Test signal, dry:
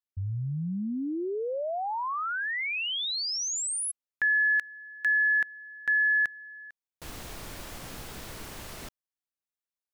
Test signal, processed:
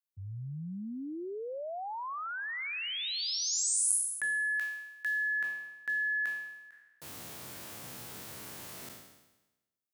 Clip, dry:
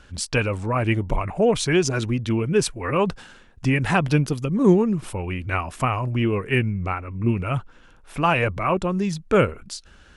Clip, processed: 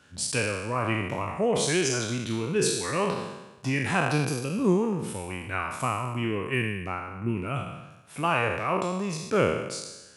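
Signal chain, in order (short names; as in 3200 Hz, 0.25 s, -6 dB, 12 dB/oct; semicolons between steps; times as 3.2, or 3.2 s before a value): spectral trails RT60 1.06 s; HPF 94 Hz 24 dB/oct; high shelf 7900 Hz +8.5 dB; gain -8 dB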